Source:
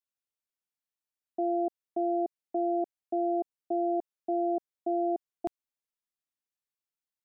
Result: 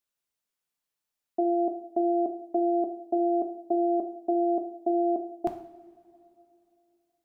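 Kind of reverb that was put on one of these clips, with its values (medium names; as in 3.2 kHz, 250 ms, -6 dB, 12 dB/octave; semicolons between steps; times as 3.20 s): two-slope reverb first 0.59 s, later 3 s, from -18 dB, DRR 4.5 dB; trim +5 dB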